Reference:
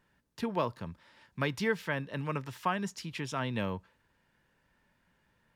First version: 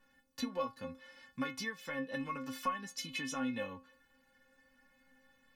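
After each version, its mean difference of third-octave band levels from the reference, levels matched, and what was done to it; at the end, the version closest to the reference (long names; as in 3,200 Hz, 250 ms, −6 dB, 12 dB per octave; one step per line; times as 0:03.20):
5.5 dB: downward compressor 6 to 1, threshold −37 dBFS, peak gain reduction 12.5 dB
stiff-string resonator 260 Hz, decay 0.27 s, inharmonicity 0.008
level +16.5 dB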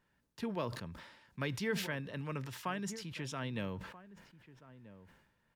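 4.0 dB: dynamic equaliser 920 Hz, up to −5 dB, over −45 dBFS, Q 1.3
slap from a distant wall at 220 metres, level −16 dB
level that may fall only so fast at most 61 dB per second
level −5 dB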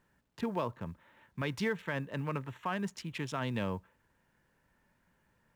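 2.5 dB: adaptive Wiener filter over 9 samples
log-companded quantiser 8 bits
brickwall limiter −23.5 dBFS, peak gain reduction 6 dB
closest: third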